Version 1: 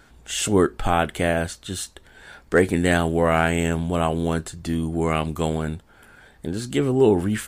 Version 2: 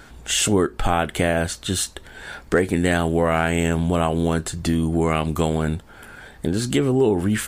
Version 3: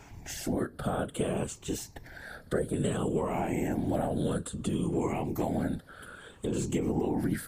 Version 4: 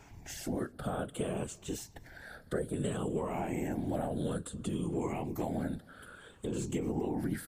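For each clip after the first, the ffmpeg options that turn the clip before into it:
-af "acompressor=threshold=0.0501:ratio=3,volume=2.51"
-filter_complex "[0:a]afftfilt=real='re*pow(10,12/40*sin(2*PI*(0.71*log(max(b,1)*sr/1024/100)/log(2)-(-0.59)*(pts-256)/sr)))':imag='im*pow(10,12/40*sin(2*PI*(0.71*log(max(b,1)*sr/1024/100)/log(2)-(-0.59)*(pts-256)/sr)))':win_size=1024:overlap=0.75,afftfilt=real='hypot(re,im)*cos(2*PI*random(0))':imag='hypot(re,im)*sin(2*PI*random(1))':win_size=512:overlap=0.75,acrossover=split=110|860|7800[s0][s1][s2][s3];[s0]acompressor=threshold=0.00794:ratio=4[s4];[s1]acompressor=threshold=0.0562:ratio=4[s5];[s2]acompressor=threshold=0.00631:ratio=4[s6];[s3]acompressor=threshold=0.00794:ratio=4[s7];[s4][s5][s6][s7]amix=inputs=4:normalize=0,volume=0.841"
-filter_complex "[0:a]asplit=2[s0][s1];[s1]adelay=256.6,volume=0.0501,highshelf=f=4000:g=-5.77[s2];[s0][s2]amix=inputs=2:normalize=0,volume=0.596"

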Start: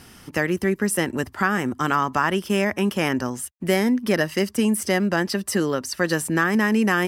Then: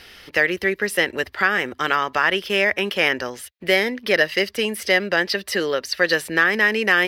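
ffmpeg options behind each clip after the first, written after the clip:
-af "equalizer=f=125:t=o:w=1:g=-10,equalizer=f=250:t=o:w=1:g=-9,equalizer=f=500:t=o:w=1:g=7,equalizer=f=1000:t=o:w=1:g=-5,equalizer=f=2000:t=o:w=1:g=8,equalizer=f=4000:t=o:w=1:g=11,equalizer=f=8000:t=o:w=1:g=-10"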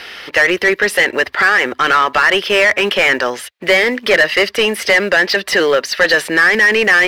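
-filter_complex "[0:a]acrusher=bits=7:mode=log:mix=0:aa=0.000001,asplit=2[s0][s1];[s1]highpass=f=720:p=1,volume=11.2,asoftclip=type=tanh:threshold=0.75[s2];[s0][s2]amix=inputs=2:normalize=0,lowpass=f=2400:p=1,volume=0.501,volume=1.19"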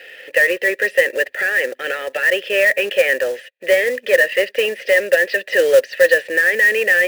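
-filter_complex "[0:a]dynaudnorm=f=130:g=3:m=2,asplit=3[s0][s1][s2];[s0]bandpass=f=530:t=q:w=8,volume=1[s3];[s1]bandpass=f=1840:t=q:w=8,volume=0.501[s4];[s2]bandpass=f=2480:t=q:w=8,volume=0.355[s5];[s3][s4][s5]amix=inputs=3:normalize=0,acrusher=bits=4:mode=log:mix=0:aa=0.000001,volume=1.5"

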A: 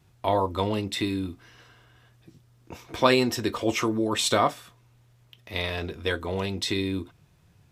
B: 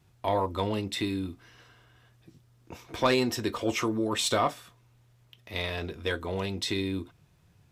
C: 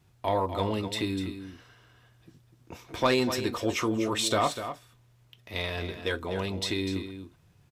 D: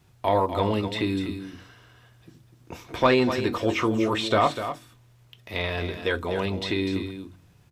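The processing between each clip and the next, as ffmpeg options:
-af "asoftclip=type=tanh:threshold=0.266,volume=0.75"
-af "aecho=1:1:248:0.316"
-filter_complex "[0:a]acrossover=split=3700[s0][s1];[s1]acompressor=threshold=0.00282:ratio=4:attack=1:release=60[s2];[s0][s2]amix=inputs=2:normalize=0,bandreject=f=46.77:t=h:w=4,bandreject=f=93.54:t=h:w=4,bandreject=f=140.31:t=h:w=4,bandreject=f=187.08:t=h:w=4,bandreject=f=233.85:t=h:w=4,bandreject=f=280.62:t=h:w=4,bandreject=f=327.39:t=h:w=4,volume=1.78"

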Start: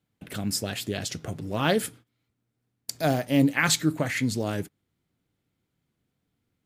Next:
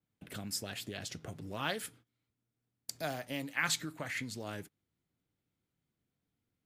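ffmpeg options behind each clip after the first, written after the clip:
-filter_complex "[0:a]acrossover=split=790|1700[s0][s1][s2];[s0]acompressor=threshold=0.0251:ratio=6[s3];[s3][s1][s2]amix=inputs=3:normalize=0,adynamicequalizer=threshold=0.00794:dfrequency=4100:dqfactor=0.7:tfrequency=4100:tqfactor=0.7:attack=5:release=100:ratio=0.375:range=2:mode=cutabove:tftype=highshelf,volume=0.398"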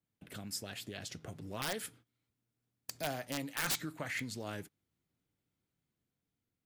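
-af "dynaudnorm=f=570:g=5:m=1.41,aeval=exprs='(mod(14.1*val(0)+1,2)-1)/14.1':c=same,volume=0.708"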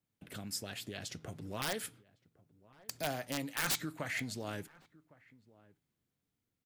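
-filter_complex "[0:a]asplit=2[s0][s1];[s1]adelay=1108,volume=0.0794,highshelf=f=4000:g=-24.9[s2];[s0][s2]amix=inputs=2:normalize=0,volume=1.12"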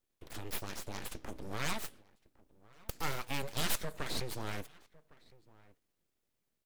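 -af "aeval=exprs='abs(val(0))':c=same,volume=1.5"

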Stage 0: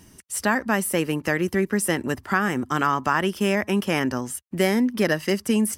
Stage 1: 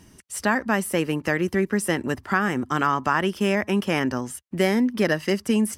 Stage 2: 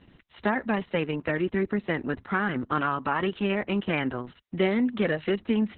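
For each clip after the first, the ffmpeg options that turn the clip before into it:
-af "highshelf=f=9100:g=-8"
-af "volume=0.708" -ar 48000 -c:a libopus -b:a 6k

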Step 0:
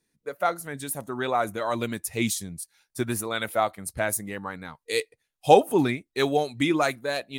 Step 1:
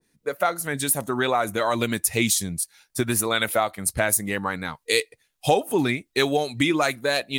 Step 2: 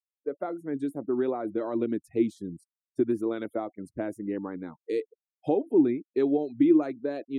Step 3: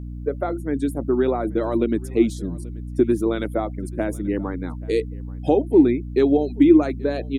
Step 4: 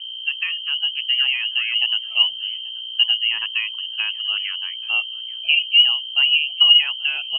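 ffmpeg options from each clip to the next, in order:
-af "acompressor=threshold=0.0398:ratio=3,adynamicequalizer=threshold=0.00562:dfrequency=1600:dqfactor=0.7:tfrequency=1600:tqfactor=0.7:attack=5:release=100:ratio=0.375:range=2:mode=boostabove:tftype=highshelf,volume=2.37"
-af "afftfilt=real='re*gte(hypot(re,im),0.0224)':imag='im*gte(hypot(re,im),0.0224)':win_size=1024:overlap=0.75,bandpass=f=320:t=q:w=3.8:csg=0,volume=1.78"
-af "highshelf=f=2700:g=9,aeval=exprs='val(0)+0.0126*(sin(2*PI*60*n/s)+sin(2*PI*2*60*n/s)/2+sin(2*PI*3*60*n/s)/3+sin(2*PI*4*60*n/s)/4+sin(2*PI*5*60*n/s)/5)':c=same,aecho=1:1:833:0.075,volume=2.24"
-af "lowpass=f=2700:t=q:w=0.5098,lowpass=f=2700:t=q:w=0.6013,lowpass=f=2700:t=q:w=0.9,lowpass=f=2700:t=q:w=2.563,afreqshift=-3200"

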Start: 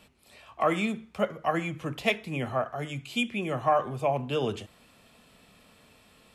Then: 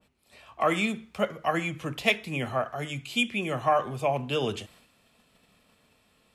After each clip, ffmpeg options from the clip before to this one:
-af "agate=range=0.447:threshold=0.00158:ratio=16:detection=peak,adynamicequalizer=threshold=0.00891:dfrequency=1700:dqfactor=0.7:tfrequency=1700:tqfactor=0.7:attack=5:release=100:ratio=0.375:range=2.5:mode=boostabove:tftype=highshelf"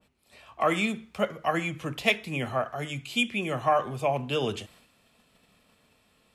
-af anull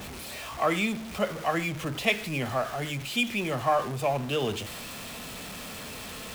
-af "aeval=exprs='val(0)+0.5*0.0251*sgn(val(0))':c=same,volume=0.794"

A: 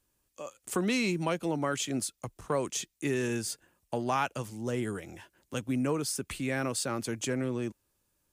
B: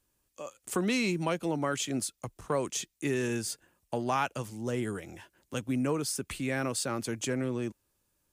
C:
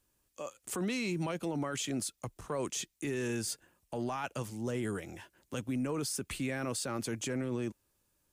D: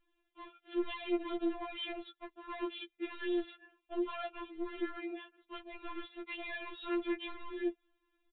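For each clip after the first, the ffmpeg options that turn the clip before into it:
-af anull
-af "alimiter=level_in=1.41:limit=0.0631:level=0:latency=1:release=10,volume=0.708"
-af "aresample=8000,asoftclip=type=hard:threshold=0.0168,aresample=44100,afftfilt=real='re*4*eq(mod(b,16),0)':imag='im*4*eq(mod(b,16),0)':win_size=2048:overlap=0.75,volume=1.5"

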